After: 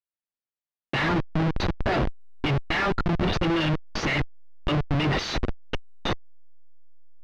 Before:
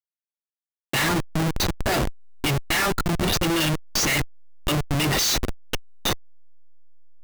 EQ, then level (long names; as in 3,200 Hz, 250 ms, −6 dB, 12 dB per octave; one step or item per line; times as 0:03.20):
low-pass filter 11,000 Hz 12 dB per octave
high-frequency loss of the air 260 metres
0.0 dB